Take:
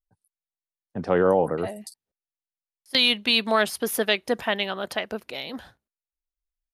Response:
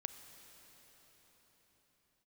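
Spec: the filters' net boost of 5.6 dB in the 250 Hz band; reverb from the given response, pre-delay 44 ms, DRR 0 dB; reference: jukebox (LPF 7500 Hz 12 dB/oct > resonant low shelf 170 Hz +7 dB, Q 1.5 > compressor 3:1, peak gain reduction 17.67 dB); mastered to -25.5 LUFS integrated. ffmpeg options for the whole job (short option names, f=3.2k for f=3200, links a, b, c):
-filter_complex "[0:a]equalizer=f=250:t=o:g=8,asplit=2[a][b];[1:a]atrim=start_sample=2205,adelay=44[c];[b][c]afir=irnorm=-1:irlink=0,volume=2.5dB[d];[a][d]amix=inputs=2:normalize=0,lowpass=7.5k,lowshelf=f=170:t=q:w=1.5:g=7,acompressor=threshold=-35dB:ratio=3,volume=9.5dB"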